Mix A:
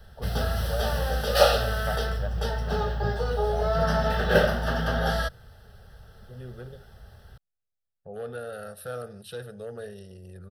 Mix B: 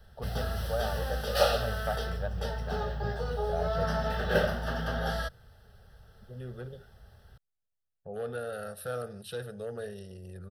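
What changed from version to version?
background -6.0 dB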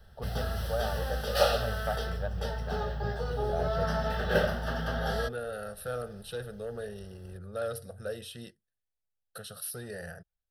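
second voice: entry -3.00 s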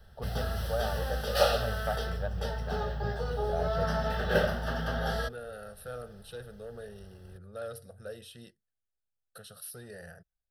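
second voice -5.5 dB

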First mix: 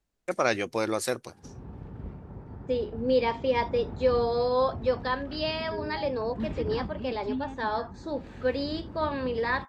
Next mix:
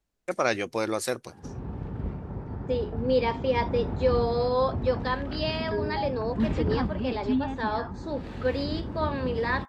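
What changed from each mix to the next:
background +7.0 dB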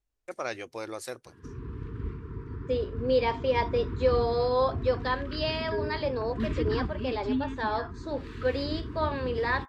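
first voice -8.5 dB; background: add Chebyshev band-stop 460–980 Hz, order 4; master: add peaking EQ 190 Hz -9.5 dB 0.6 oct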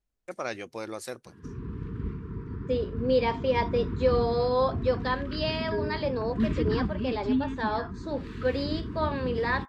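master: add peaking EQ 190 Hz +9.5 dB 0.6 oct

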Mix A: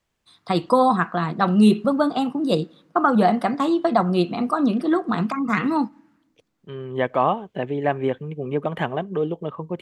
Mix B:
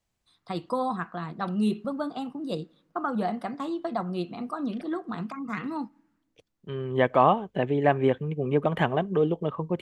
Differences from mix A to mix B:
first voice -11.5 dB; master: add bass shelf 63 Hz +9 dB

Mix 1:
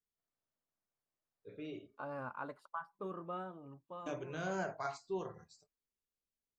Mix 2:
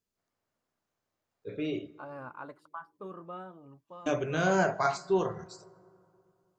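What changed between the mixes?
first voice +11.0 dB; reverb: on, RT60 2.6 s

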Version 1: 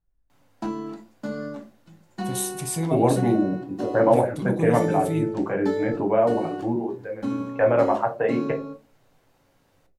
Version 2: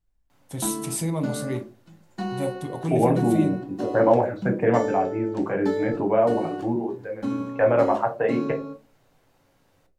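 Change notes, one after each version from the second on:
first voice: entry -1.75 s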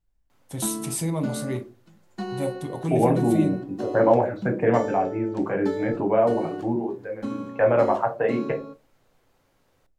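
background: send -11.0 dB

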